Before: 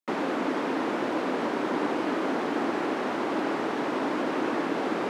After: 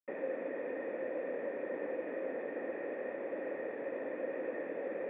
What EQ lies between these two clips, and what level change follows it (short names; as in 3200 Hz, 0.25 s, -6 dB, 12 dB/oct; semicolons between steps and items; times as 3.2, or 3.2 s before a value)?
vocal tract filter e; 0.0 dB